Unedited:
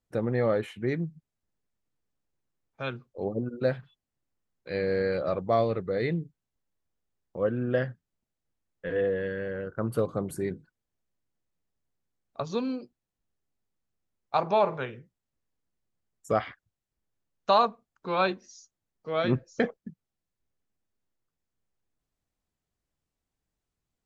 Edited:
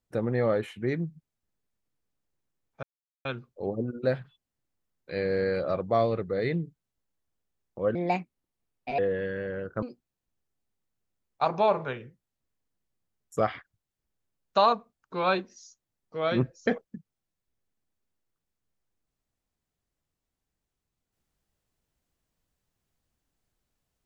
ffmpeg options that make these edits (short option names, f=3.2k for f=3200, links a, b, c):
-filter_complex "[0:a]asplit=5[a][b][c][d][e];[a]atrim=end=2.83,asetpts=PTS-STARTPTS,afade=t=out:st=2.826:d=0.004:c=hsin,apad=pad_dur=0.42[f];[b]atrim=start=2.83:end=7.534,asetpts=PTS-STARTPTS,afade=t=in:d=0.004:c=hsin[g];[c]atrim=start=7.53:end=9,asetpts=PTS-STARTPTS,asetrate=62622,aresample=44100[h];[d]atrim=start=8.996:end=9.842[i];[e]atrim=start=12.748[j];[f][g]concat=n=2:v=0:a=1[k];[k][h]acrossfade=d=0.004:c1=hsin:c2=hsin[l];[l][i]acrossfade=d=0.004:c1=hsin:c2=hsin[m];[m][j]acrossfade=d=0.004:c1=hsin:c2=hsin"